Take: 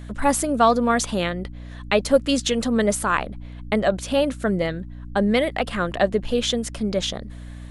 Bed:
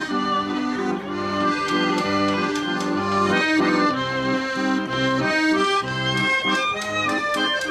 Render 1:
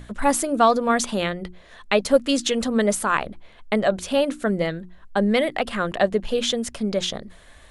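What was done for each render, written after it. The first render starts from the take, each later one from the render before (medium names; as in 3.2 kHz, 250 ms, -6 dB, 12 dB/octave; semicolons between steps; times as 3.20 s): hum notches 60/120/180/240/300/360 Hz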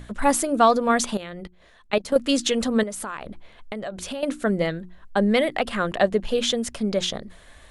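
1.17–2.16 s: level held to a coarse grid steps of 18 dB; 2.83–4.23 s: compression 8:1, threshold -28 dBFS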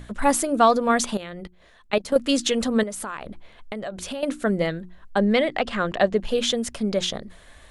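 5.18–6.16 s: low-pass 7.4 kHz 24 dB/octave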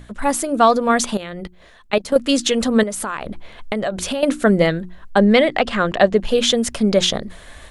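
level rider gain up to 10 dB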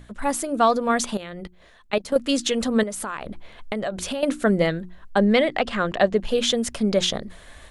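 trim -5 dB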